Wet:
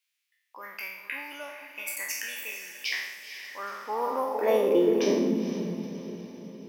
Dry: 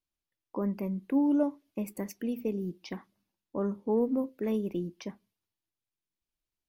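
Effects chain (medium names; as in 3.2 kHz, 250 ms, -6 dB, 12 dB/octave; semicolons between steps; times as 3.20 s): spectral sustain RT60 0.86 s; echo that smears into a reverb 472 ms, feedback 52%, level -10 dB; high-pass sweep 2.2 kHz -> 130 Hz, 3.44–5.87 s; trim +8.5 dB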